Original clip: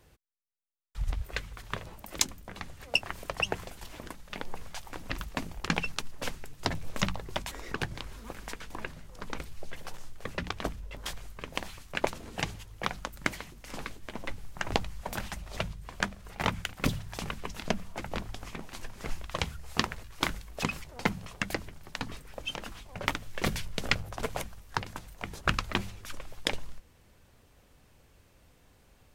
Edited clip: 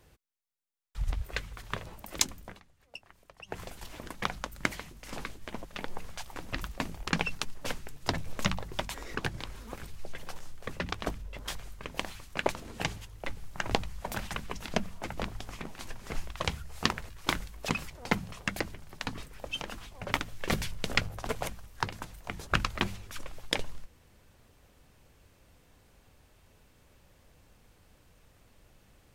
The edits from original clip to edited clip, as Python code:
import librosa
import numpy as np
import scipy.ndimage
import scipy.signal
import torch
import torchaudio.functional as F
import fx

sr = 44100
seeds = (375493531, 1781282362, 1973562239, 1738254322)

y = fx.edit(x, sr, fx.fade_down_up(start_s=2.47, length_s=1.14, db=-19.5, fade_s=0.14),
    fx.cut(start_s=8.4, length_s=1.01),
    fx.move(start_s=12.83, length_s=1.43, to_s=4.22),
    fx.cut(start_s=15.35, length_s=1.93), tone=tone)